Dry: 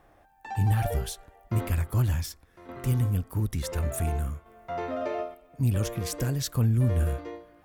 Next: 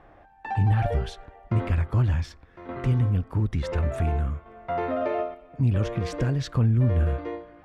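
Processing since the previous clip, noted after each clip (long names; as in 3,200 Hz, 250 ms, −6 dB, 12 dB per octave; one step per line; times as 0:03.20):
low-pass filter 2,900 Hz 12 dB per octave
in parallel at +1 dB: downward compressor, threshold −32 dBFS, peak gain reduction 12 dB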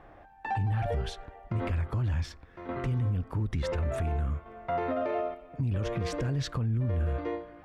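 brickwall limiter −22.5 dBFS, peak gain reduction 10 dB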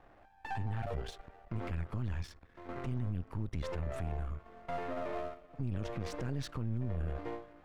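gain on one half-wave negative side −12 dB
level −4.5 dB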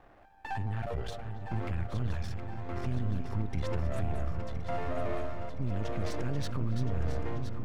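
feedback delay that plays each chunk backwards 509 ms, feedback 72%, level −8 dB
feedback echo with a low-pass in the loop 279 ms, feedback 74%, low-pass 1,400 Hz, level −13 dB
level +2.5 dB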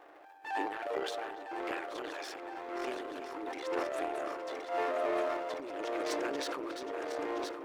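linear-phase brick-wall high-pass 280 Hz
transient designer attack −9 dB, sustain +10 dB
level +4 dB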